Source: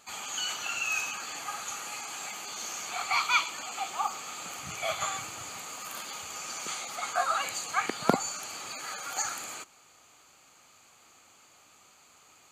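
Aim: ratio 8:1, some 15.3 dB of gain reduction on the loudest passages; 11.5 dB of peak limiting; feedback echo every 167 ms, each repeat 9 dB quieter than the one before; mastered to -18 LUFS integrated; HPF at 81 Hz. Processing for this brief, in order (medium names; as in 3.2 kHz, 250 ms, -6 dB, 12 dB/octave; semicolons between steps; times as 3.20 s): high-pass 81 Hz; compression 8:1, threshold -37 dBFS; peak limiter -31 dBFS; feedback delay 167 ms, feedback 35%, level -9 dB; trim +21.5 dB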